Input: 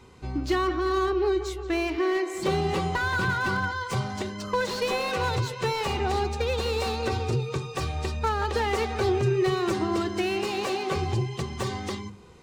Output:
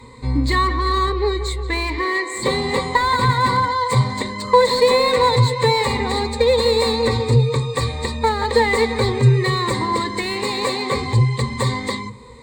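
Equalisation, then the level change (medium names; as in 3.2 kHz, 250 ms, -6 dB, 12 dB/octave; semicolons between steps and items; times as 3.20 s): rippled EQ curve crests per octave 0.99, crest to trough 17 dB; +6.0 dB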